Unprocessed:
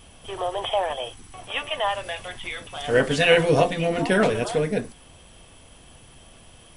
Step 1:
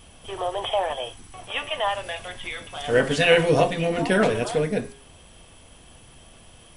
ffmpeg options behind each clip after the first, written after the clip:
ffmpeg -i in.wav -af "bandreject=frequency=136.3:width_type=h:width=4,bandreject=frequency=272.6:width_type=h:width=4,bandreject=frequency=408.9:width_type=h:width=4,bandreject=frequency=545.2:width_type=h:width=4,bandreject=frequency=681.5:width_type=h:width=4,bandreject=frequency=817.8:width_type=h:width=4,bandreject=frequency=954.1:width_type=h:width=4,bandreject=frequency=1090.4:width_type=h:width=4,bandreject=frequency=1226.7:width_type=h:width=4,bandreject=frequency=1363:width_type=h:width=4,bandreject=frequency=1499.3:width_type=h:width=4,bandreject=frequency=1635.6:width_type=h:width=4,bandreject=frequency=1771.9:width_type=h:width=4,bandreject=frequency=1908.2:width_type=h:width=4,bandreject=frequency=2044.5:width_type=h:width=4,bandreject=frequency=2180.8:width_type=h:width=4,bandreject=frequency=2317.1:width_type=h:width=4,bandreject=frequency=2453.4:width_type=h:width=4,bandreject=frequency=2589.7:width_type=h:width=4,bandreject=frequency=2726:width_type=h:width=4,bandreject=frequency=2862.3:width_type=h:width=4,bandreject=frequency=2998.6:width_type=h:width=4,bandreject=frequency=3134.9:width_type=h:width=4,bandreject=frequency=3271.2:width_type=h:width=4,bandreject=frequency=3407.5:width_type=h:width=4,bandreject=frequency=3543.8:width_type=h:width=4,bandreject=frequency=3680.1:width_type=h:width=4,bandreject=frequency=3816.4:width_type=h:width=4,bandreject=frequency=3952.7:width_type=h:width=4,bandreject=frequency=4089:width_type=h:width=4,bandreject=frequency=4225.3:width_type=h:width=4,bandreject=frequency=4361.6:width_type=h:width=4,bandreject=frequency=4497.9:width_type=h:width=4,bandreject=frequency=4634.2:width_type=h:width=4,bandreject=frequency=4770.5:width_type=h:width=4,bandreject=frequency=4906.8:width_type=h:width=4,bandreject=frequency=5043.1:width_type=h:width=4,bandreject=frequency=5179.4:width_type=h:width=4" out.wav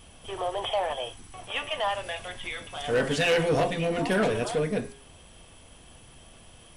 ffmpeg -i in.wav -af "asoftclip=type=tanh:threshold=-16dB,volume=-2dB" out.wav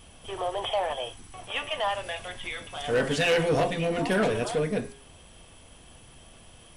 ffmpeg -i in.wav -af anull out.wav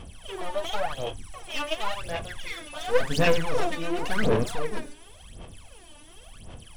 ffmpeg -i in.wav -af "aeval=exprs='clip(val(0),-1,0.0126)':channel_layout=same,aphaser=in_gain=1:out_gain=1:delay=3.4:decay=0.79:speed=0.92:type=sinusoidal,volume=-2.5dB" out.wav

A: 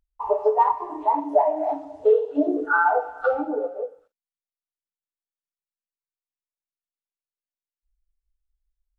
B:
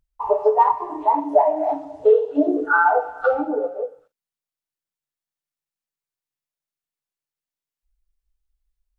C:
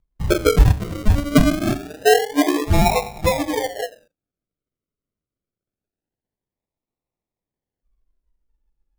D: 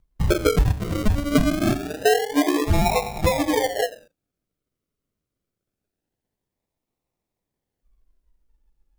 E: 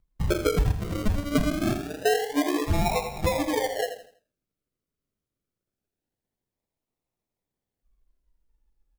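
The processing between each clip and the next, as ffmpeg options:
ffmpeg -i in.wav -af "equalizer=frequency=140:width=7.4:gain=11.5,volume=3dB" out.wav
ffmpeg -i in.wav -af "acrusher=samples=40:mix=1:aa=0.000001:lfo=1:lforange=24:lforate=0.25,lowshelf=frequency=290:gain=5.5,volume=-1dB" out.wav
ffmpeg -i in.wav -af "acompressor=threshold=-23dB:ratio=3,volume=5dB" out.wav
ffmpeg -i in.wav -af "aecho=1:1:82|164|246|328:0.282|0.093|0.0307|0.0101,volume=-5dB" out.wav

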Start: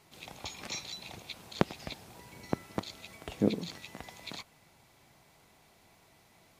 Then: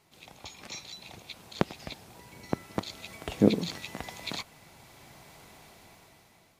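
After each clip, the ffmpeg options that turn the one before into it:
ffmpeg -i in.wav -af "dynaudnorm=framelen=310:gausssize=7:maxgain=14dB,volume=-3.5dB" out.wav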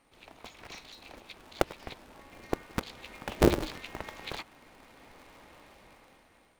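ffmpeg -i in.wav -af "aeval=exprs='val(0)+0.000562*sin(2*PI*8900*n/s)':channel_layout=same,bass=frequency=250:gain=-2,treble=frequency=4000:gain=-13,aeval=exprs='val(0)*sgn(sin(2*PI*140*n/s))':channel_layout=same" out.wav

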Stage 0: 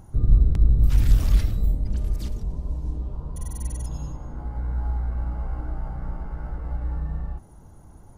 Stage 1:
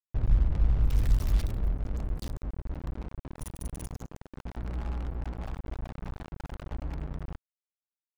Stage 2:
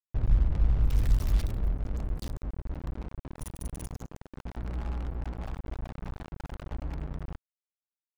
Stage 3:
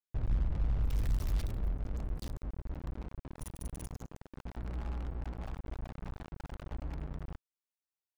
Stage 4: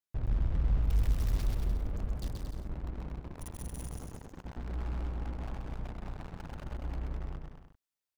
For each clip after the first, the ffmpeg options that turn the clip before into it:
ffmpeg -i in.wav -af "aeval=exprs='val(0)*gte(abs(val(0)),0.0447)':channel_layout=same,anlmdn=3.98,volume=-7dB" out.wav
ffmpeg -i in.wav -af anull out.wav
ffmpeg -i in.wav -af "asoftclip=type=tanh:threshold=-20dB,volume=-4dB" out.wav
ffmpeg -i in.wav -af "aecho=1:1:130|227.5|300.6|355.5|396.6:0.631|0.398|0.251|0.158|0.1" out.wav

